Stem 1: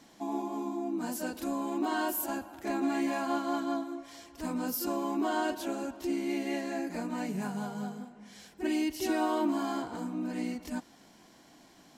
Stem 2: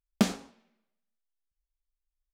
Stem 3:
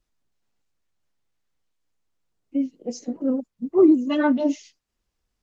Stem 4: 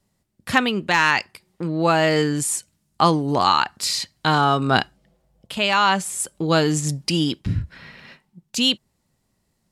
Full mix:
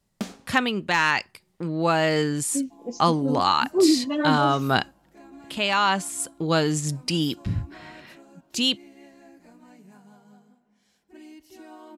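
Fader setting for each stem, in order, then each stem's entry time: -16.0, -7.0, -3.5, -3.5 dB; 2.50, 0.00, 0.00, 0.00 s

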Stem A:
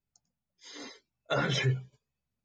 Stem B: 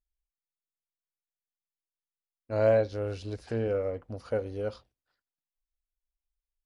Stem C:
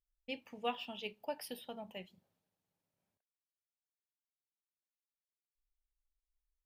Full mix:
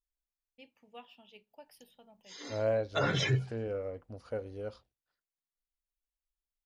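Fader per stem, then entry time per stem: -1.0, -7.0, -13.0 dB; 1.65, 0.00, 0.30 s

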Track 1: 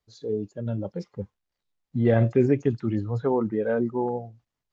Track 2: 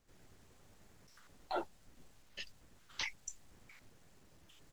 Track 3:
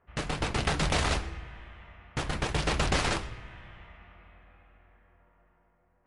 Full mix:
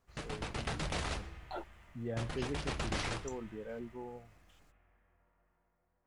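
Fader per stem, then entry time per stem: -19.0, -5.0, -10.0 dB; 0.00, 0.00, 0.00 s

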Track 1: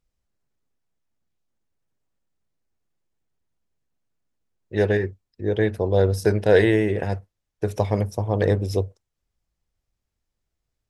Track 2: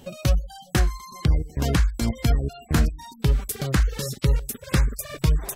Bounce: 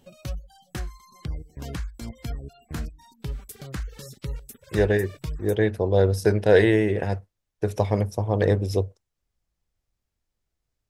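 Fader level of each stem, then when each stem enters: -0.5, -12.0 dB; 0.00, 0.00 s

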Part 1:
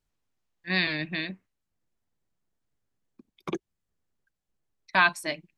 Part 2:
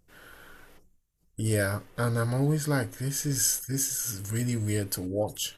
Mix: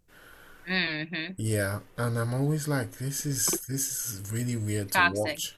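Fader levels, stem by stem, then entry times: -1.5, -1.5 dB; 0.00, 0.00 s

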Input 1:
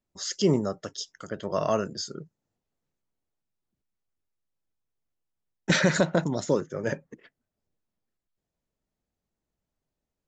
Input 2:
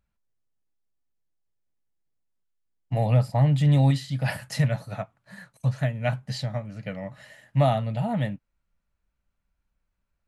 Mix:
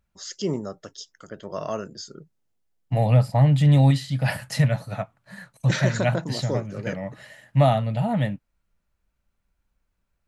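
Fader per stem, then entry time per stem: -4.0, +3.0 dB; 0.00, 0.00 s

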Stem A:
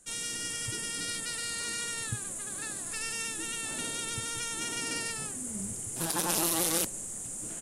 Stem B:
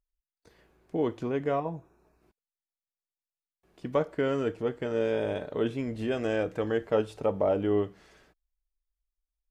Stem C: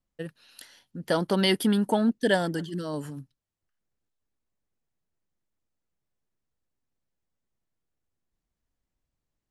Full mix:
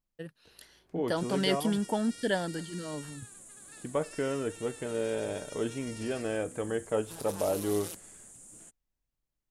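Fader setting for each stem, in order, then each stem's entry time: -13.0, -4.0, -6.0 dB; 1.10, 0.00, 0.00 s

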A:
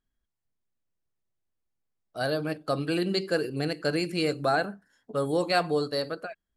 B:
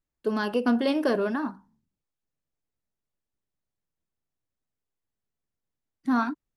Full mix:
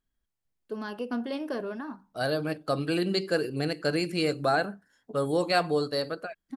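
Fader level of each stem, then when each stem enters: 0.0, -8.5 dB; 0.00, 0.45 s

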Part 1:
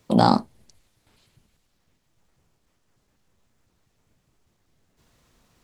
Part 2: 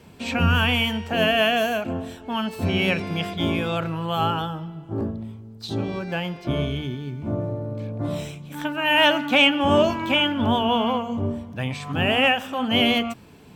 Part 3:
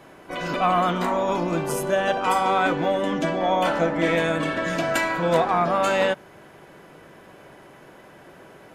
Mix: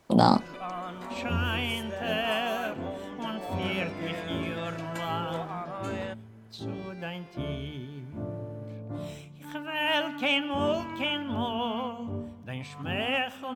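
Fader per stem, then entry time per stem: -3.0, -9.5, -16.0 dB; 0.00, 0.90, 0.00 s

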